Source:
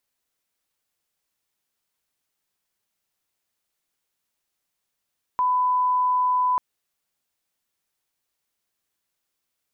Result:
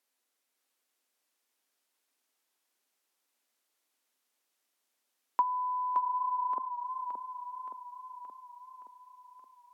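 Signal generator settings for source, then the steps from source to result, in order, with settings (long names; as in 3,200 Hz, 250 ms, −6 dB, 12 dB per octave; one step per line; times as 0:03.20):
line-up tone −18 dBFS 1.19 s
Chebyshev high-pass filter 240 Hz, order 4
treble cut that deepens with the level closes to 540 Hz, closed at −20.5 dBFS
feedback echo with a swinging delay time 572 ms, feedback 60%, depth 56 cents, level −6 dB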